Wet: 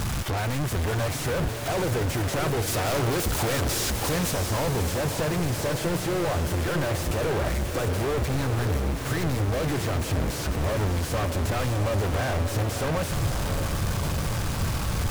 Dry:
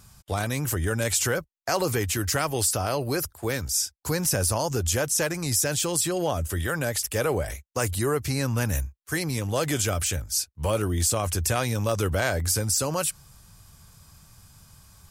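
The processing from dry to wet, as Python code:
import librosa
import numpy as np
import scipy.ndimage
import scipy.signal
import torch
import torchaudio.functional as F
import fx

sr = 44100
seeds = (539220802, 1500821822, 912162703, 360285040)

y = np.sign(x) * np.sqrt(np.mean(np.square(x)))
y = fx.high_shelf(y, sr, hz=2600.0, db=fx.steps((0.0, -9.5), (2.66, -3.0), (4.3, -11.5)))
y = fx.echo_diffused(y, sr, ms=624, feedback_pct=61, wet_db=-7)
y = fx.noise_mod_delay(y, sr, seeds[0], noise_hz=1500.0, depth_ms=0.031)
y = y * 10.0 ** (2.0 / 20.0)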